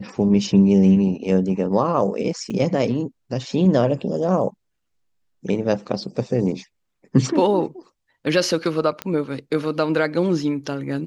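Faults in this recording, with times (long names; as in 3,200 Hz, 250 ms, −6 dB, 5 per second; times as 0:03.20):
0:02.50: drop-out 4.1 ms
0:09.02: click −11 dBFS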